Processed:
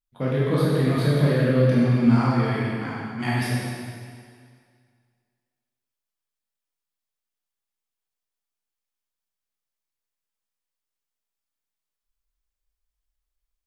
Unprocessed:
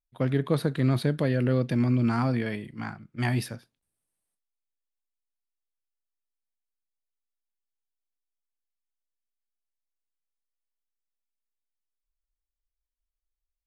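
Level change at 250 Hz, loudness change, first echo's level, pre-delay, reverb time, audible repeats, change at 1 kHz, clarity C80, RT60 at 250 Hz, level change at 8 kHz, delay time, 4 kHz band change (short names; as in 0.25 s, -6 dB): +5.0 dB, +4.5 dB, none, 12 ms, 2.0 s, none, +6.0 dB, -0.5 dB, 1.9 s, +5.0 dB, none, +5.5 dB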